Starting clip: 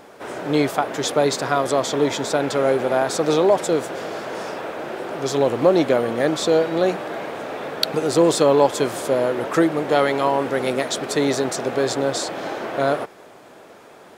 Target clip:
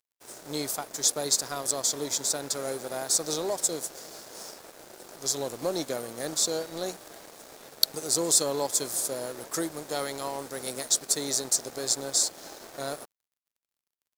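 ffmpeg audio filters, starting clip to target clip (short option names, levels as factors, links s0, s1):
-af "aexciter=amount=8.8:drive=5.6:freq=4200,aeval=exprs='sgn(val(0))*max(abs(val(0))-0.0299,0)':c=same,volume=0.211"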